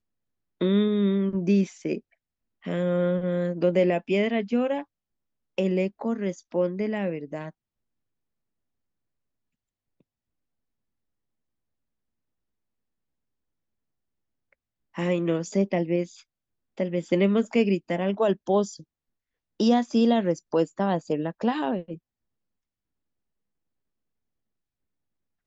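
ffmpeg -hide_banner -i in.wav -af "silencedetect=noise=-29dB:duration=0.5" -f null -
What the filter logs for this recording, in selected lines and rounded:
silence_start: 0.00
silence_end: 0.61 | silence_duration: 0.61
silence_start: 1.98
silence_end: 2.67 | silence_duration: 0.69
silence_start: 4.81
silence_end: 5.58 | silence_duration: 0.77
silence_start: 7.48
silence_end: 14.98 | silence_duration: 7.50
silence_start: 16.03
silence_end: 16.80 | silence_duration: 0.76
silence_start: 18.65
silence_end: 19.60 | silence_duration: 0.95
silence_start: 21.94
silence_end: 25.46 | silence_duration: 3.53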